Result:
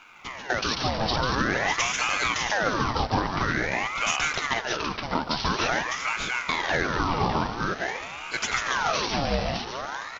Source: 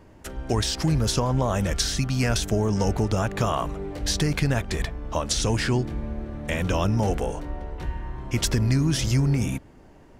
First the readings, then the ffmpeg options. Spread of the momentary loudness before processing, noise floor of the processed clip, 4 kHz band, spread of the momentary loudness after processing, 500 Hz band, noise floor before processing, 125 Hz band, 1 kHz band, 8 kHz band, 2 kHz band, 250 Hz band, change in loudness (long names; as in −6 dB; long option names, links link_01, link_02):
11 LU, −38 dBFS, +1.5 dB, 6 LU, −2.0 dB, −50 dBFS, −11.0 dB, +6.0 dB, −3.0 dB, +8.5 dB, −5.5 dB, −1.0 dB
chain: -af "equalizer=frequency=650:width=0.47:gain=9.5,aresample=11025,acrusher=bits=4:mode=log:mix=0:aa=0.000001,aresample=44100,bass=frequency=250:gain=-11,treble=frequency=4000:gain=7,aecho=1:1:142|604:0.562|0.501,alimiter=limit=-10.5dB:level=0:latency=1:release=302,acrusher=bits=11:mix=0:aa=0.000001,highpass=110,aeval=exprs='val(0)*sin(2*PI*1100*n/s+1100*0.7/0.48*sin(2*PI*0.48*n/s))':channel_layout=same"